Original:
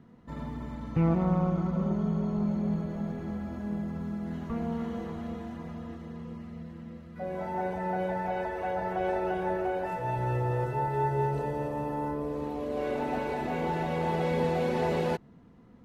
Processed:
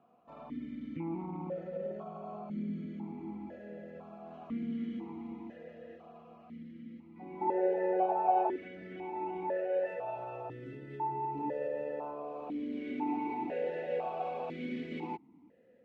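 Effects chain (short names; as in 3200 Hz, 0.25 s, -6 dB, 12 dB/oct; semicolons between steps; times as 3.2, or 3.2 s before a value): limiter -23.5 dBFS, peak gain reduction 7.5 dB; 7.41–8.56 small resonant body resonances 380/830 Hz, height 16 dB, ringing for 45 ms; vowel sequencer 2 Hz; gain +6.5 dB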